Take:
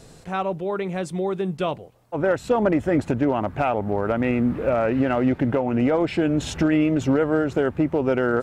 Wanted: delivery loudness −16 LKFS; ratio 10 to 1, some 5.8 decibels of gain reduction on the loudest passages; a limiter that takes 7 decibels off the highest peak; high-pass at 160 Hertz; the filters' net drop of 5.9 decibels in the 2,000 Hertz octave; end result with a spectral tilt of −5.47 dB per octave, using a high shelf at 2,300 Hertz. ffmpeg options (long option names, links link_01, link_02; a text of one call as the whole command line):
ffmpeg -i in.wav -af "highpass=160,equalizer=frequency=2000:width_type=o:gain=-6.5,highshelf=frequency=2300:gain=-4,acompressor=threshold=-22dB:ratio=10,volume=13.5dB,alimiter=limit=-6.5dB:level=0:latency=1" out.wav